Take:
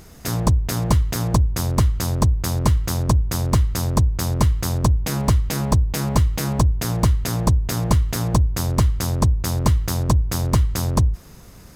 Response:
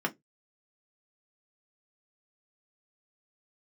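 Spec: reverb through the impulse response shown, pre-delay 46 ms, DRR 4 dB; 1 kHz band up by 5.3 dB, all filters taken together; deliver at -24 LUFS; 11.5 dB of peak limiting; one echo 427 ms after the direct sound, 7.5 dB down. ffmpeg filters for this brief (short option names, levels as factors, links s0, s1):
-filter_complex "[0:a]equalizer=f=1000:t=o:g=6,alimiter=limit=0.237:level=0:latency=1,aecho=1:1:427:0.422,asplit=2[s0][s1];[1:a]atrim=start_sample=2205,adelay=46[s2];[s1][s2]afir=irnorm=-1:irlink=0,volume=0.266[s3];[s0][s3]amix=inputs=2:normalize=0,volume=0.75"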